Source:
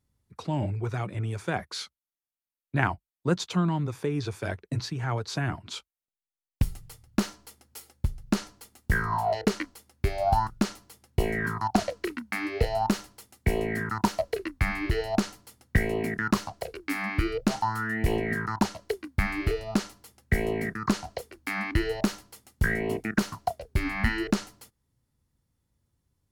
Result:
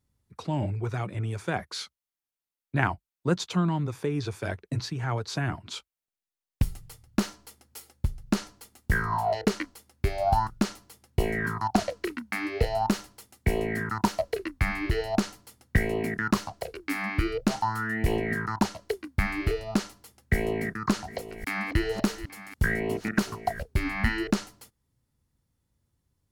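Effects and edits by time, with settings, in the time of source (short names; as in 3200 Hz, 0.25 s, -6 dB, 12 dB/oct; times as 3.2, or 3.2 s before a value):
20.33–23.65 reverse delay 0.558 s, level -13.5 dB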